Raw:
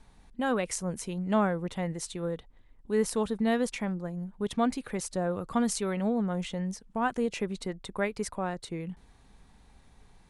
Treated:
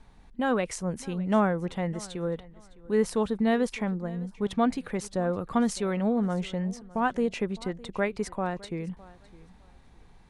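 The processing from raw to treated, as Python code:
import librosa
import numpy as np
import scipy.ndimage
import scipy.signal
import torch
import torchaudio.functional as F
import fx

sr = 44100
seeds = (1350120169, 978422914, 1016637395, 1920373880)

p1 = fx.lowpass(x, sr, hz=4000.0, slope=6)
p2 = p1 + fx.echo_feedback(p1, sr, ms=609, feedback_pct=22, wet_db=-21.0, dry=0)
y = F.gain(torch.from_numpy(p2), 2.5).numpy()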